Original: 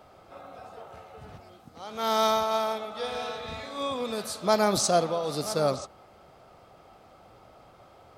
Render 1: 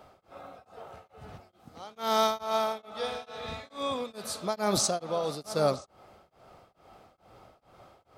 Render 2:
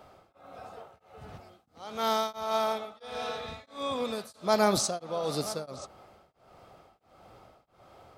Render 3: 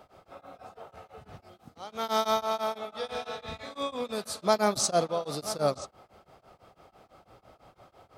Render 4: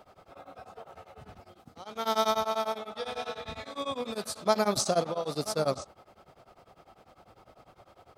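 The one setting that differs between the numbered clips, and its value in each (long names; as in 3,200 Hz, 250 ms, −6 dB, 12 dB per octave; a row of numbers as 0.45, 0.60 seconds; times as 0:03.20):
tremolo along a rectified sine, nulls at: 2.3, 1.5, 6, 10 Hertz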